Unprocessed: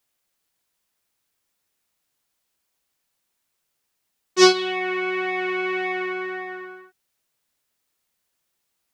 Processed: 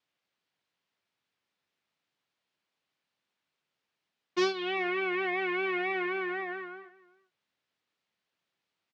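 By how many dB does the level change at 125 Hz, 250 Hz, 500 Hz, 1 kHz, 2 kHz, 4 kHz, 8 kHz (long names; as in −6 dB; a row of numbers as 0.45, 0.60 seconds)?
can't be measured, −9.0 dB, −9.0 dB, −8.0 dB, −6.0 dB, −13.0 dB, −20.5 dB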